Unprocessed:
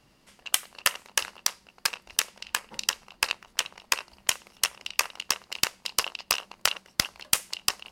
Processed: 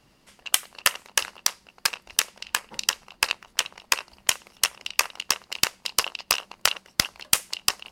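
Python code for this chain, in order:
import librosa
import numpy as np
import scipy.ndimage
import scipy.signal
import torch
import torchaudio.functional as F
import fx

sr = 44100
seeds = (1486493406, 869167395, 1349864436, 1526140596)

y = fx.hpss(x, sr, part='percussive', gain_db=3)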